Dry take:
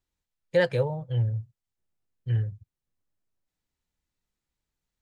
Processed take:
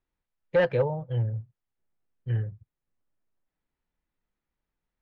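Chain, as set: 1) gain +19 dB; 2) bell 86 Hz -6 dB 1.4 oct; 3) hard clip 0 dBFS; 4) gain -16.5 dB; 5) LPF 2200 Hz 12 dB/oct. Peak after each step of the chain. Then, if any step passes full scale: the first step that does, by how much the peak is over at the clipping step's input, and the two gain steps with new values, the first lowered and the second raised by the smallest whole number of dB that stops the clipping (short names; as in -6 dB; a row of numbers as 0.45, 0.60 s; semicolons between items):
+8.0, +8.0, 0.0, -16.5, -16.0 dBFS; step 1, 8.0 dB; step 1 +11 dB, step 4 -8.5 dB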